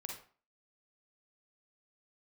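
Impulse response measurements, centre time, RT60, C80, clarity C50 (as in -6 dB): 32 ms, 0.40 s, 10.0 dB, 2.5 dB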